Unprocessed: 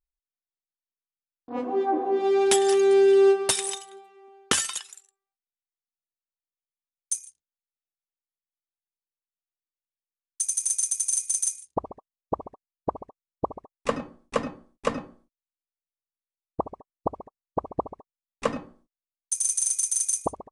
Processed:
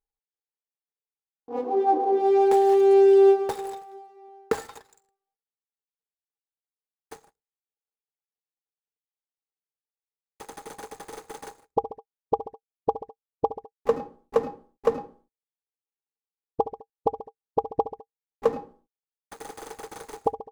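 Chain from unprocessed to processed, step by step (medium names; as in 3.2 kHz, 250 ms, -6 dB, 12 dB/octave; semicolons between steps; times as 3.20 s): median filter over 15 samples; small resonant body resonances 450/810 Hz, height 17 dB, ringing for 65 ms; trim -5 dB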